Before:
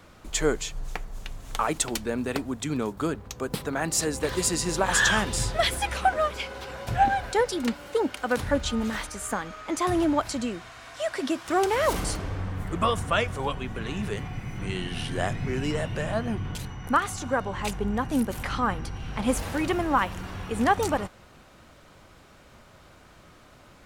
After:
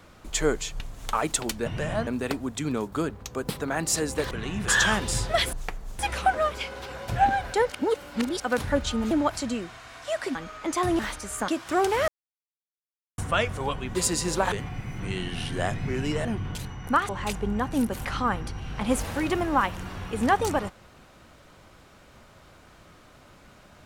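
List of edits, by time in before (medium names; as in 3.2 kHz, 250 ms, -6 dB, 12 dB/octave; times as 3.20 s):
0.80–1.26 s: move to 5.78 s
4.36–4.93 s: swap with 13.74–14.11 s
7.49–8.19 s: reverse
8.90–9.39 s: swap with 10.03–11.27 s
11.87–12.97 s: mute
15.84–16.25 s: move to 2.12 s
17.09–17.47 s: delete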